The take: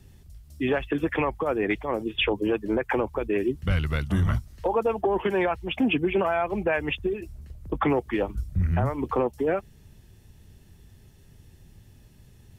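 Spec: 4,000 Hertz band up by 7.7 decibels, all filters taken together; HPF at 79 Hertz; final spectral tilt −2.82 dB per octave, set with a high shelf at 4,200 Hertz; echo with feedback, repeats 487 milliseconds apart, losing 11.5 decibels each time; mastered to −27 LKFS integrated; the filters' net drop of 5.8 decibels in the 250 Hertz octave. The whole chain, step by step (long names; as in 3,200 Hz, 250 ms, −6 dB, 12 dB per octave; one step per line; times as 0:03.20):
high-pass filter 79 Hz
parametric band 250 Hz −8.5 dB
parametric band 4,000 Hz +7.5 dB
high-shelf EQ 4,200 Hz +7 dB
repeating echo 487 ms, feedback 27%, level −11.5 dB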